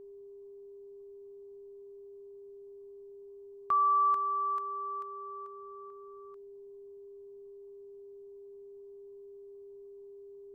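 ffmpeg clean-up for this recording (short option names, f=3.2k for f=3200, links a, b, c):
-af "bandreject=f=400:w=30,agate=range=-21dB:threshold=-42dB"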